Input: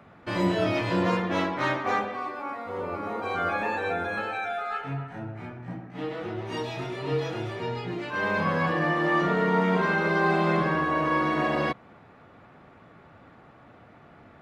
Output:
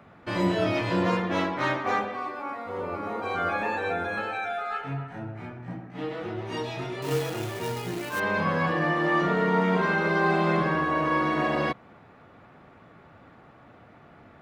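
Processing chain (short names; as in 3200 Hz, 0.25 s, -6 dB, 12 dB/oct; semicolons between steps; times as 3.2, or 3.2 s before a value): 7.02–8.2 companded quantiser 4-bit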